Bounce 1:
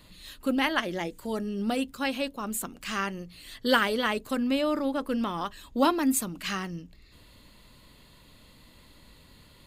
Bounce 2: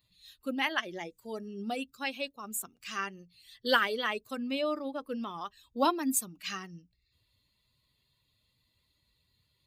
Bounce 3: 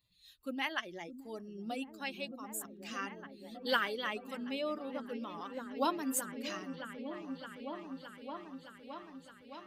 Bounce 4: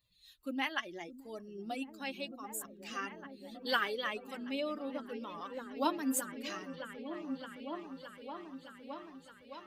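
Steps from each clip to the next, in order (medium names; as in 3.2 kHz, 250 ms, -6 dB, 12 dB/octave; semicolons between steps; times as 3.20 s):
expander on every frequency bin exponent 1.5; high-pass 430 Hz 6 dB/octave
delay with an opening low-pass 616 ms, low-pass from 200 Hz, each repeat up 1 oct, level -3 dB; trim -5.5 dB
flange 0.74 Hz, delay 1.6 ms, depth 2.4 ms, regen +52%; trim +4 dB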